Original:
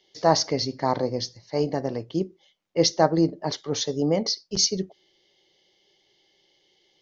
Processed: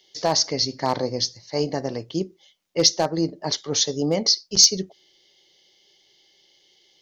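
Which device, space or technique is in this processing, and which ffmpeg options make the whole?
limiter into clipper: -af "alimiter=limit=-9dB:level=0:latency=1:release=491,asoftclip=type=hard:threshold=-11.5dB,highshelf=f=3.1k:g=11"

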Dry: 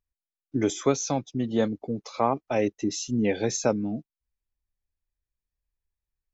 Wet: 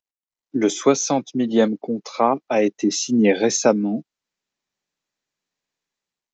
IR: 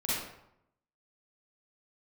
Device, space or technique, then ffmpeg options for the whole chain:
Bluetooth headset: -af "highpass=f=170:w=0.5412,highpass=f=170:w=1.3066,dynaudnorm=f=140:g=7:m=13dB,aresample=16000,aresample=44100,volume=-1.5dB" -ar 16000 -c:a sbc -b:a 64k

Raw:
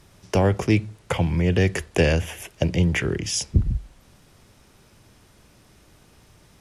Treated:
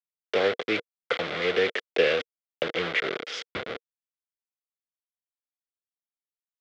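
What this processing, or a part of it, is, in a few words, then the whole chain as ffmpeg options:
hand-held game console: -af "acrusher=bits=3:mix=0:aa=0.000001,highpass=400,equalizer=f=470:t=q:w=4:g=10,equalizer=f=930:t=q:w=4:g=-8,equalizer=f=1.4k:t=q:w=4:g=6,equalizer=f=2.1k:t=q:w=4:g=7,equalizer=f=3.4k:t=q:w=4:g=7,lowpass=f=4.3k:w=0.5412,lowpass=f=4.3k:w=1.3066,volume=-5.5dB"

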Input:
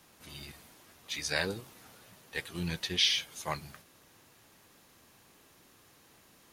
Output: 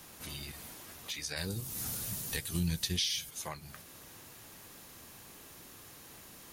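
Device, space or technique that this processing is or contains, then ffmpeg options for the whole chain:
ASMR close-microphone chain: -filter_complex "[0:a]lowshelf=f=110:g=5,acompressor=threshold=-47dB:ratio=4,highshelf=f=7.6k:g=7.5,asplit=3[a][b][c];[a]afade=t=out:st=1.36:d=0.02[d];[b]bass=f=250:g=12,treble=f=4k:g=12,afade=t=in:st=1.36:d=0.02,afade=t=out:st=3.29:d=0.02[e];[c]afade=t=in:st=3.29:d=0.02[f];[d][e][f]amix=inputs=3:normalize=0,volume=6dB"

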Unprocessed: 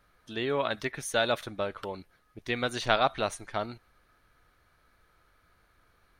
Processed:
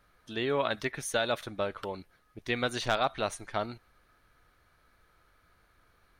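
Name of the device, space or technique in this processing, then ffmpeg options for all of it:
clipper into limiter: -af "asoftclip=type=hard:threshold=-12dB,alimiter=limit=-15.5dB:level=0:latency=1:release=384"

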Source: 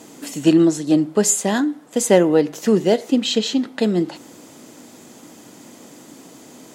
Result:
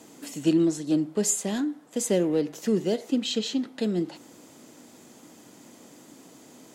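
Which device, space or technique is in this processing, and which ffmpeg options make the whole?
one-band saturation: -filter_complex "[0:a]acrossover=split=560|2400[a][b][c];[b]asoftclip=type=tanh:threshold=-33dB[d];[a][d][c]amix=inputs=3:normalize=0,volume=-7.5dB"

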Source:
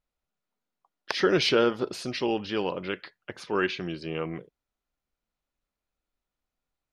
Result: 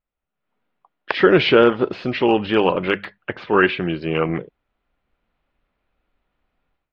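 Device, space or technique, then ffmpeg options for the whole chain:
action camera in a waterproof case: -filter_complex "[0:a]asettb=1/sr,asplit=3[a][b][c];[a]atrim=end=2.584[d];[b]atrim=start=2.58:end=3.18,asetpts=PTS-STARTPTS,afade=t=in:d=0.004:c=qsin,afade=t=out:st=0.596:d=0.004:c=qsin,bandreject=f=50:t=h:w=6,bandreject=f=100:t=h:w=6,bandreject=f=150:t=h:w=6,bandreject=f=200:t=h:w=6[e];[c]atrim=start=3.176[f];[d][e]acrossfade=d=0.004:c1=hsin:c2=qsin[g];[g][f]acrossfade=d=0.004:c1=qsin:c2=hsin,lowpass=f=3k:w=0.5412,lowpass=f=3k:w=1.3066,highshelf=f=7.8k:g=3.5,dynaudnorm=f=320:g=3:m=16.5dB,volume=-1dB" -ar 44100 -c:a aac -b:a 48k

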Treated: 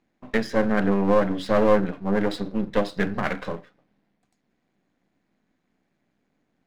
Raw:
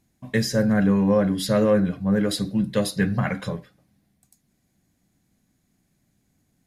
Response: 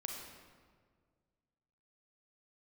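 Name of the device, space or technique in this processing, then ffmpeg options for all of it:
crystal radio: -af "highpass=260,lowpass=2.6k,aeval=exprs='if(lt(val(0),0),0.251*val(0),val(0))':c=same,volume=5dB"

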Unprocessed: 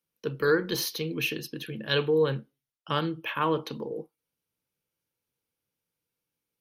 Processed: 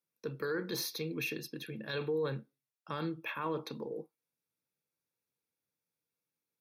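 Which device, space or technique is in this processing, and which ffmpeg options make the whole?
PA system with an anti-feedback notch: -af "highpass=110,asuperstop=centerf=3000:order=12:qfactor=7.4,alimiter=limit=-21.5dB:level=0:latency=1:release=17,volume=-5.5dB"

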